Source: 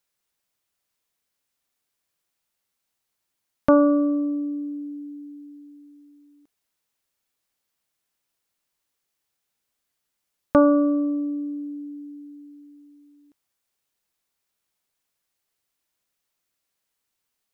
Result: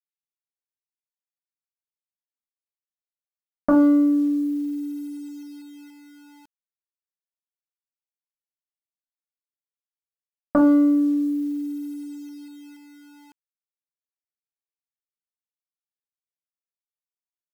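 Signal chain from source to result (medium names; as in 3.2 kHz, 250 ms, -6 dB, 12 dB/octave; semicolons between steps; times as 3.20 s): local Wiener filter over 15 samples; dynamic bell 600 Hz, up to +5 dB, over -33 dBFS, Q 5.2; level-controlled noise filter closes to 380 Hz, open at -24 dBFS; peaking EQ 200 Hz +10 dB 0.27 oct; hum notches 60/120/180/240/300/360/420/480/540 Hz; reverberation RT60 0.25 s, pre-delay 4 ms, DRR 1 dB; bit crusher 8-bit; trim -4 dB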